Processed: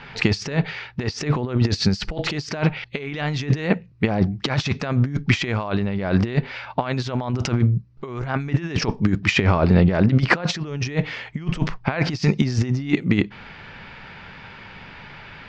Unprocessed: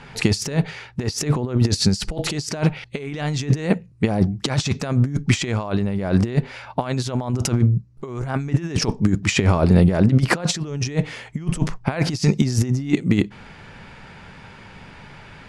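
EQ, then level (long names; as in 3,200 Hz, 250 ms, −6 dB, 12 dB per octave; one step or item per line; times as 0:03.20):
low-pass filter 5,200 Hz 24 dB per octave
dynamic equaliser 3,800 Hz, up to −4 dB, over −38 dBFS, Q 1.3
parametric band 2,300 Hz +6 dB 2.6 octaves
−1.5 dB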